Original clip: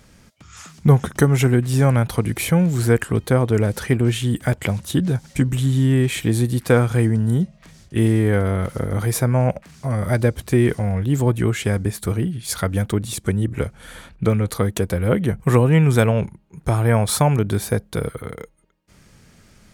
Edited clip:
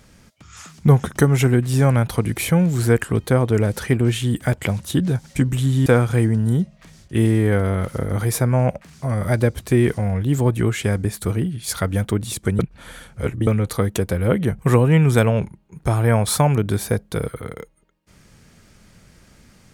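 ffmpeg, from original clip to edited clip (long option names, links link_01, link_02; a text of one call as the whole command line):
ffmpeg -i in.wav -filter_complex "[0:a]asplit=4[link_01][link_02][link_03][link_04];[link_01]atrim=end=5.862[link_05];[link_02]atrim=start=6.668:end=13.402[link_06];[link_03]atrim=start=13.398:end=14.282,asetpts=PTS-STARTPTS,areverse[link_07];[link_04]atrim=start=14.278[link_08];[link_05][link_06]acrossfade=duration=0.004:curve1=hsin:curve2=hsin[link_09];[link_09][link_07]acrossfade=duration=0.004:curve1=hsin:curve2=hsin[link_10];[link_10][link_08]acrossfade=duration=0.004:curve1=hsin:curve2=hsin" out.wav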